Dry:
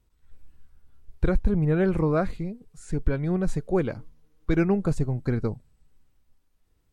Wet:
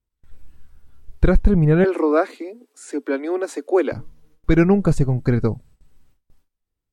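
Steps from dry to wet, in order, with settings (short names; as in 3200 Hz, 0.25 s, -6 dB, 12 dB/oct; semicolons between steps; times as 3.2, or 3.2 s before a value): 1.84–3.92 steep high-pass 250 Hz 96 dB/oct; gate with hold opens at -52 dBFS; gain +7.5 dB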